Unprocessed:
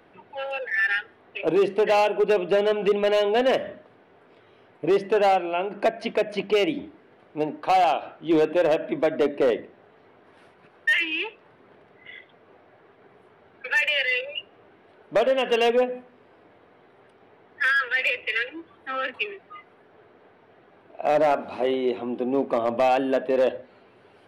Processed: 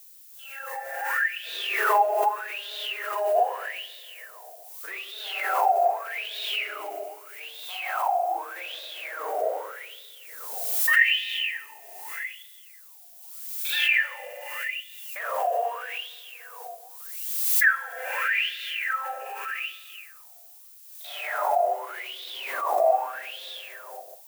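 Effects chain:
one scale factor per block 3 bits
high-pass filter 400 Hz 24 dB per octave
four-comb reverb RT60 2.4 s, combs from 33 ms, DRR −7.5 dB
automatic gain control gain up to 11.5 dB
downward expander −22 dBFS
LFO wah 0.82 Hz 680–3,700 Hz, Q 15
background noise violet −50 dBFS
background raised ahead of every attack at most 39 dB per second

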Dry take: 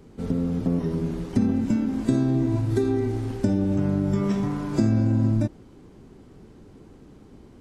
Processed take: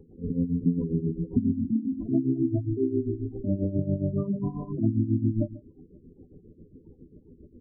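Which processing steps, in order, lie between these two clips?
notch filter 1,400 Hz, Q 12
single-tap delay 142 ms −16.5 dB
amplitude tremolo 7.4 Hz, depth 77%
double-tracking delay 12 ms −9 dB
gate on every frequency bin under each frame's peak −15 dB strong

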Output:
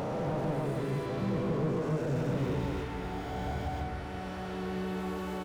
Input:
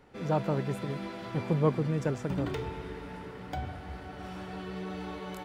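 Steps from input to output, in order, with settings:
peak hold with a rise ahead of every peak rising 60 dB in 2.50 s
downward compressor 3 to 1, threshold −27 dBFS, peak gain reduction 8 dB
loudspeakers that aren't time-aligned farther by 46 metres −5 dB, 95 metres −2 dB
slew-rate limiting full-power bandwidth 20 Hz
level −2.5 dB

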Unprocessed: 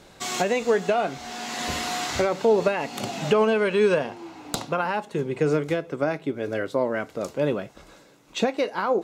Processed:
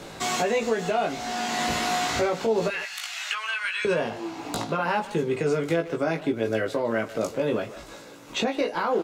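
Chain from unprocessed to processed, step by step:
0:02.68–0:03.85: high-pass filter 1,500 Hz 24 dB per octave
brickwall limiter −17.5 dBFS, peak gain reduction 7.5 dB
double-tracking delay 18 ms −3 dB
far-end echo of a speakerphone 150 ms, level −12 dB
multiband upward and downward compressor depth 40%

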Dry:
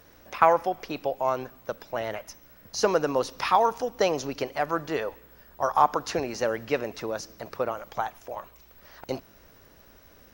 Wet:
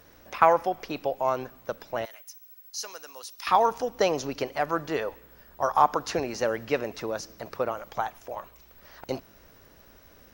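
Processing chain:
0:02.05–0:03.47: first difference

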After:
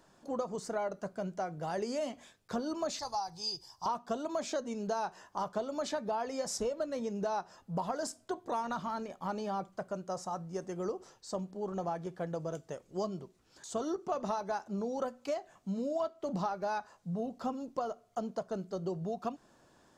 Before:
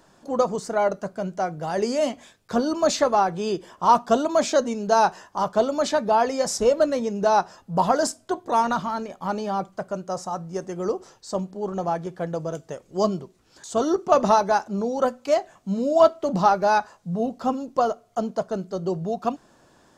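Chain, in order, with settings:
0:02.99–0:03.86: drawn EQ curve 130 Hz 0 dB, 190 Hz −16 dB, 580 Hz −18 dB, 830 Hz −1 dB, 1,300 Hz −14 dB, 2,100 Hz −13 dB, 3,300 Hz −9 dB, 4,800 Hz +15 dB, 7,100 Hz +1 dB, 13,000 Hz +6 dB
downward compressor 6 to 1, threshold −24 dBFS, peak gain reduction 13.5 dB
level −7.5 dB

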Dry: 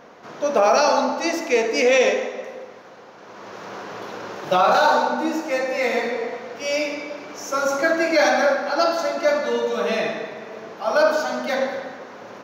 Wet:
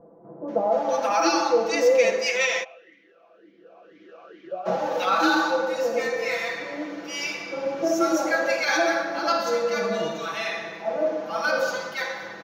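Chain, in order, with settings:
comb filter 6 ms, depth 98%
multiband delay without the direct sound lows, highs 480 ms, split 750 Hz
0:02.63–0:04.65: formant filter swept between two vowels a-i 1.5 Hz → 2.8 Hz
level −4.5 dB

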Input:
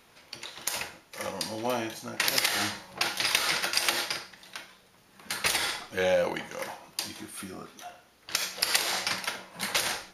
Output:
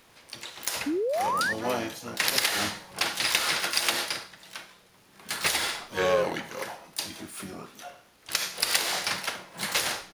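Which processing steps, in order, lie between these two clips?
surface crackle 170 per second −51 dBFS
pitch-shifted copies added −4 semitones −8 dB, +12 semitones −10 dB
sound drawn into the spectrogram rise, 0:00.86–0:01.53, 270–1,900 Hz −27 dBFS

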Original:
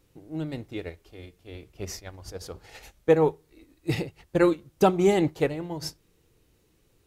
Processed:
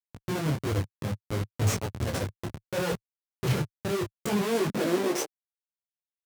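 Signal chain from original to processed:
dynamic equaliser 7,700 Hz, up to +6 dB, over −60 dBFS, Q 4
comparator with hysteresis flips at −37 dBFS
high-pass filter sweep 93 Hz → 610 Hz, 0:04.71–0:06.44
speed change +13%
micro pitch shift up and down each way 22 cents
level +3 dB

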